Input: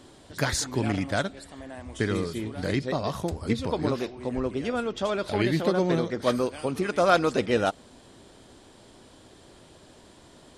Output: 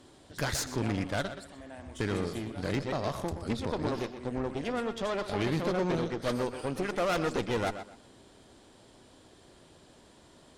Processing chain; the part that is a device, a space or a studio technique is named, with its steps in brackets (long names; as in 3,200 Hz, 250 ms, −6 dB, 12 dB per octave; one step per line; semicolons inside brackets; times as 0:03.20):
rockabilly slapback (tube saturation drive 25 dB, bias 0.8; tape delay 123 ms, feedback 26%, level −9 dB, low-pass 4,300 Hz)